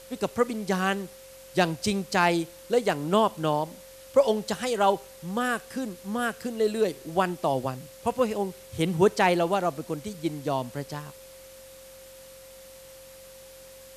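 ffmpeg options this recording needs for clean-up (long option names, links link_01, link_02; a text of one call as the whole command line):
ffmpeg -i in.wav -af "adeclick=threshold=4,bandreject=frequency=45.2:width_type=h:width=4,bandreject=frequency=90.4:width_type=h:width=4,bandreject=frequency=135.6:width_type=h:width=4,bandreject=frequency=180.8:width_type=h:width=4,bandreject=frequency=226:width_type=h:width=4,bandreject=frequency=530:width=30,afwtdn=0.0032" out.wav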